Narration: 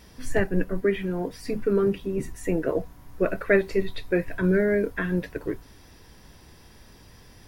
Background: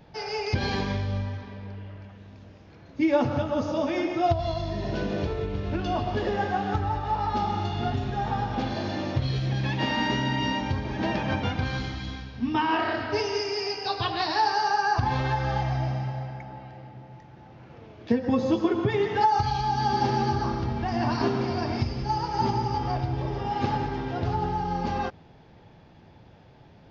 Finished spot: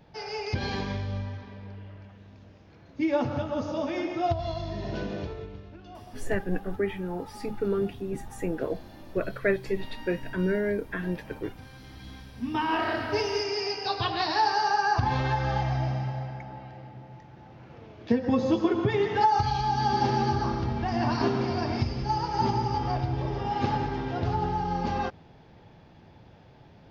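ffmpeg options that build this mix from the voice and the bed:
-filter_complex "[0:a]adelay=5950,volume=0.562[s0];[1:a]volume=5.31,afade=t=out:st=4.99:d=0.74:silence=0.177828,afade=t=in:st=11.78:d=1.18:silence=0.125893[s1];[s0][s1]amix=inputs=2:normalize=0"

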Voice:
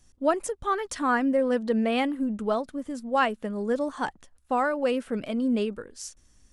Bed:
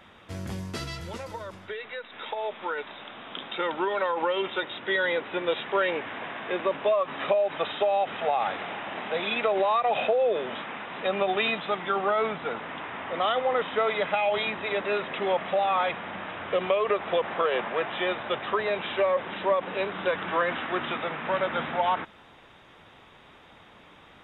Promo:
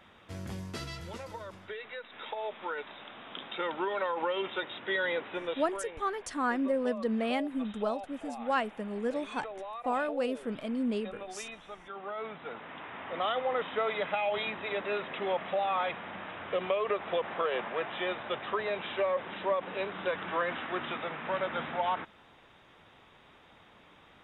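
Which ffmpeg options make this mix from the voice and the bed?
-filter_complex "[0:a]adelay=5350,volume=0.501[s0];[1:a]volume=2.24,afade=t=out:st=5.23:d=0.61:silence=0.237137,afade=t=in:st=11.89:d=1.3:silence=0.251189[s1];[s0][s1]amix=inputs=2:normalize=0"

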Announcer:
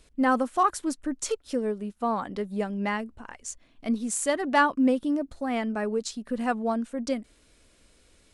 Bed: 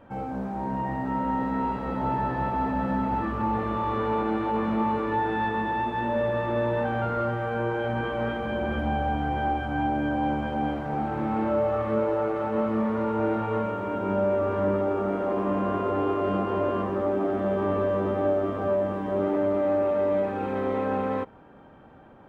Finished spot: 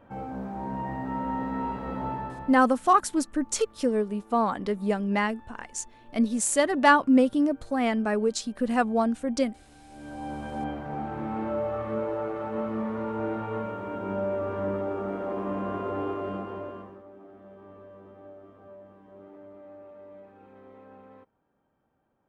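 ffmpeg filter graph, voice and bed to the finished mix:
-filter_complex "[0:a]adelay=2300,volume=1.41[s0];[1:a]volume=8.91,afade=t=out:st=1.97:d=0.66:silence=0.0630957,afade=t=in:st=9.88:d=0.73:silence=0.0749894,afade=t=out:st=16.03:d=1:silence=0.11885[s1];[s0][s1]amix=inputs=2:normalize=0"

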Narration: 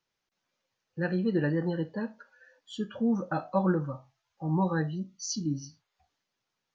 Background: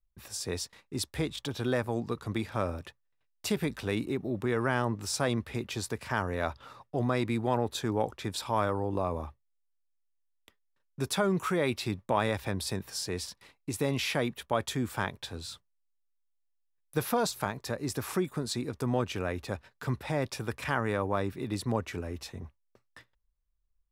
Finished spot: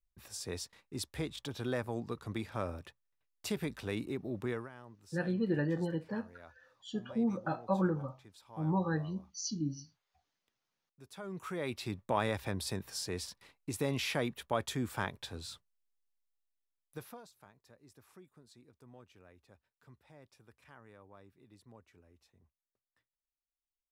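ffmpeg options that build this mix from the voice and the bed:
-filter_complex "[0:a]adelay=4150,volume=0.596[s0];[1:a]volume=4.73,afade=t=out:st=4.49:d=0.2:silence=0.133352,afade=t=in:st=11.1:d=1.04:silence=0.105925,afade=t=out:st=16.07:d=1.16:silence=0.0707946[s1];[s0][s1]amix=inputs=2:normalize=0"

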